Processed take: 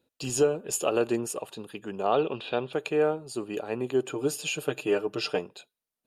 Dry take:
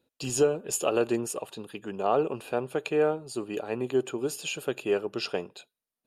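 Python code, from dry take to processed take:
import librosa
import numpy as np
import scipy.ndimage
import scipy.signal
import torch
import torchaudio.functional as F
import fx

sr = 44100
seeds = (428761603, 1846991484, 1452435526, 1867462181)

y = fx.lowpass_res(x, sr, hz=3600.0, q=5.5, at=(2.12, 2.73))
y = fx.comb(y, sr, ms=6.6, depth=0.78, at=(4.09, 5.39))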